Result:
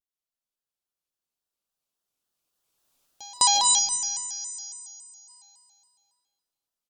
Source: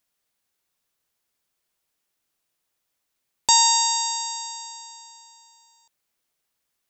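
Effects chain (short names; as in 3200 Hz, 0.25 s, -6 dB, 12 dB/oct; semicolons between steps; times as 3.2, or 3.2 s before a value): Doppler pass-by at 2.96, 10 m/s, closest 1.7 m; on a send: echo 0.228 s -14 dB; on the sum: digital reverb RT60 1.5 s, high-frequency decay 0.9×, pre-delay 0.105 s, DRR 0 dB; spectral gain 3.79–5.29, 280–5400 Hz -13 dB; in parallel at +3 dB: vocal rider 0.5 s; on the sum: bell 2000 Hz -11.5 dB 0.37 oct; pre-echo 0.201 s -24 dB; shaped vibrato square 3.6 Hz, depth 160 cents; gain +1 dB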